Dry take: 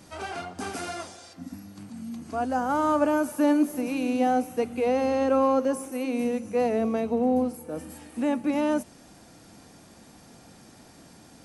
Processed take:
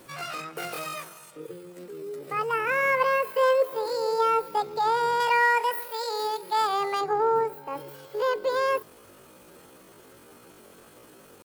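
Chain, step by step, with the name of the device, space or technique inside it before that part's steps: chipmunk voice (pitch shift +10 st); 5.20–7.01 s: tilt shelf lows -6.5 dB

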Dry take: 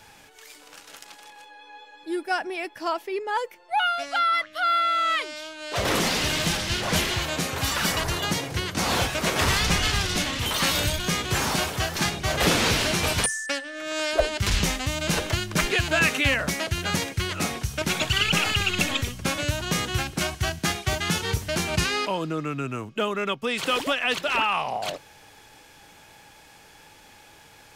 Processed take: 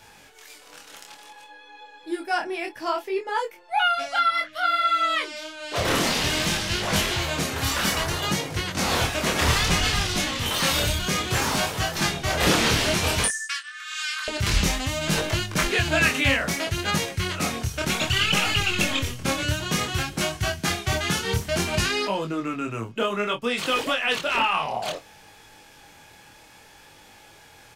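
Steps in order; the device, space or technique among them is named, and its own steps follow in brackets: double-tracked vocal (doubling 26 ms -12 dB; chorus 0.59 Hz, delay 19.5 ms, depth 7.2 ms); 13.30–14.28 s: Chebyshev high-pass 1.1 kHz, order 6; trim +3.5 dB

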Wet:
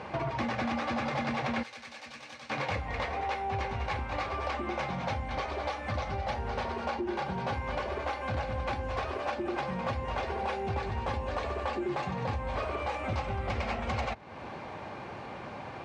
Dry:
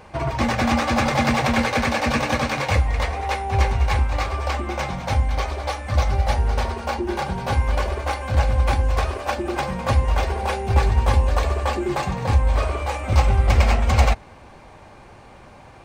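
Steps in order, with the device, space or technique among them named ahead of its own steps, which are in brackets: AM radio (band-pass 120–4200 Hz; compression 4:1, threshold -36 dBFS, peak gain reduction 17 dB; saturation -26 dBFS, distortion -23 dB); 1.63–2.50 s: pre-emphasis filter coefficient 0.9; trim +4.5 dB

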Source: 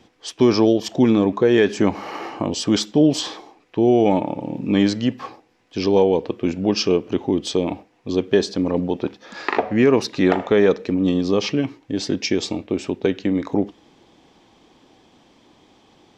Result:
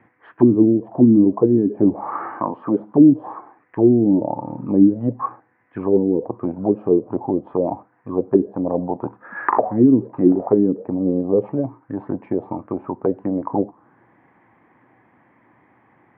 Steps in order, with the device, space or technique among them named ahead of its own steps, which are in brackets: 2.31–2.80 s: high-pass 180 Hz 12 dB/octave; envelope filter bass rig (touch-sensitive low-pass 280–2000 Hz down, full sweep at -11 dBFS; cabinet simulation 88–2000 Hz, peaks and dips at 120 Hz +8 dB, 430 Hz -4 dB, 1 kHz +4 dB); trim -3.5 dB

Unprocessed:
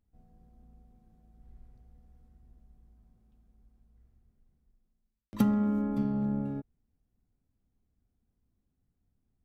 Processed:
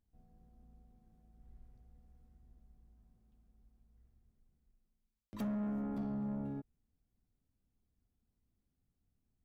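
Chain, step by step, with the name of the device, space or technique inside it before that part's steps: saturation between pre-emphasis and de-emphasis (treble shelf 2.8 kHz +11 dB; saturation -29.5 dBFS, distortion -9 dB; treble shelf 2.8 kHz -11 dB); trim -4.5 dB

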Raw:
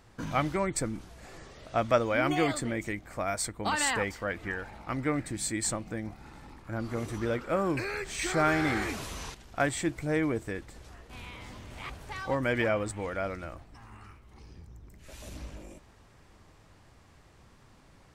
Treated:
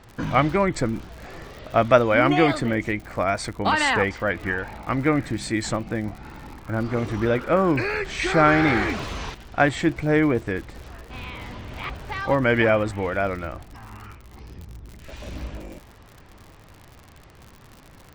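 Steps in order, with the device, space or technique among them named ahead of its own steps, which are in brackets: lo-fi chain (low-pass 4 kHz 12 dB/octave; wow and flutter; crackle 84 per s -43 dBFS); trim +9 dB

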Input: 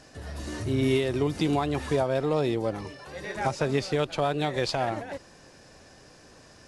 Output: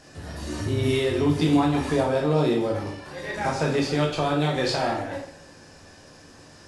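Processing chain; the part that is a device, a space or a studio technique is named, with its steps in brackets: bathroom (reverberation RT60 0.65 s, pre-delay 11 ms, DRR -1 dB)

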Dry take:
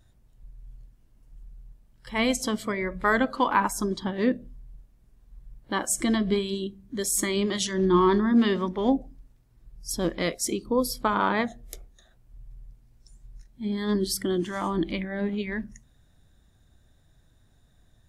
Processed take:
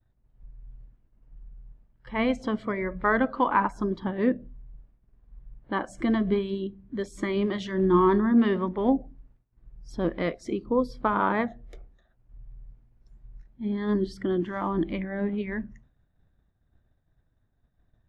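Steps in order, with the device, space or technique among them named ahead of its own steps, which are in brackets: hearing-loss simulation (low-pass 2 kHz 12 dB/octave; expander -52 dBFS)

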